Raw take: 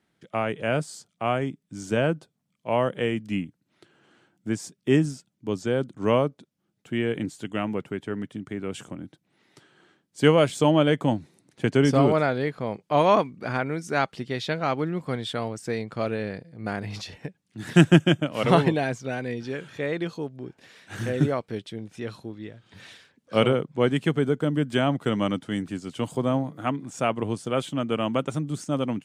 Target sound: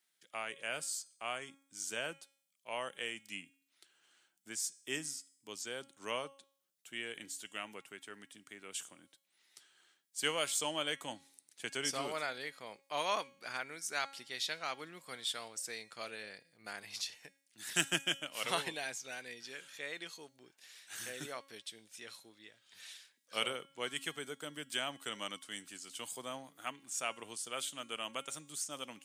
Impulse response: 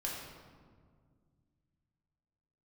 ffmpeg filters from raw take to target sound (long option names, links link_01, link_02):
-af "aderivative,bandreject=frequency=274.8:width_type=h:width=4,bandreject=frequency=549.6:width_type=h:width=4,bandreject=frequency=824.4:width_type=h:width=4,bandreject=frequency=1099.2:width_type=h:width=4,bandreject=frequency=1374:width_type=h:width=4,bandreject=frequency=1648.8:width_type=h:width=4,bandreject=frequency=1923.6:width_type=h:width=4,bandreject=frequency=2198.4:width_type=h:width=4,bandreject=frequency=2473.2:width_type=h:width=4,bandreject=frequency=2748:width_type=h:width=4,bandreject=frequency=3022.8:width_type=h:width=4,bandreject=frequency=3297.6:width_type=h:width=4,bandreject=frequency=3572.4:width_type=h:width=4,bandreject=frequency=3847.2:width_type=h:width=4,bandreject=frequency=4122:width_type=h:width=4,bandreject=frequency=4396.8:width_type=h:width=4,bandreject=frequency=4671.6:width_type=h:width=4,bandreject=frequency=4946.4:width_type=h:width=4,bandreject=frequency=5221.2:width_type=h:width=4,bandreject=frequency=5496:width_type=h:width=4,bandreject=frequency=5770.8:width_type=h:width=4,bandreject=frequency=6045.6:width_type=h:width=4,bandreject=frequency=6320.4:width_type=h:width=4,bandreject=frequency=6595.2:width_type=h:width=4,bandreject=frequency=6870:width_type=h:width=4,bandreject=frequency=7144.8:width_type=h:width=4,bandreject=frequency=7419.6:width_type=h:width=4,bandreject=frequency=7694.4:width_type=h:width=4,bandreject=frequency=7969.2:width_type=h:width=4,bandreject=frequency=8244:width_type=h:width=4,bandreject=frequency=8518.8:width_type=h:width=4,bandreject=frequency=8793.6:width_type=h:width=4,bandreject=frequency=9068.4:width_type=h:width=4,bandreject=frequency=9343.2:width_type=h:width=4,bandreject=frequency=9618:width_type=h:width=4,bandreject=frequency=9892.8:width_type=h:width=4,bandreject=frequency=10167.6:width_type=h:width=4,bandreject=frequency=10442.4:width_type=h:width=4,bandreject=frequency=10717.2:width_type=h:width=4,bandreject=frequency=10992:width_type=h:width=4,volume=3dB"